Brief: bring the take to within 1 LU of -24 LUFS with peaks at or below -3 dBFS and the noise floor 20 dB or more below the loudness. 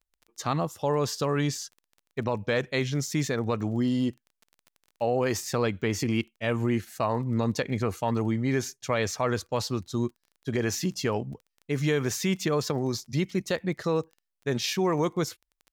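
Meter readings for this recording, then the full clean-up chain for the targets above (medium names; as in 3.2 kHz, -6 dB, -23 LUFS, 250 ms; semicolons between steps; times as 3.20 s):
tick rate 18 per s; loudness -28.5 LUFS; peak level -15.0 dBFS; loudness target -24.0 LUFS
-> de-click; trim +4.5 dB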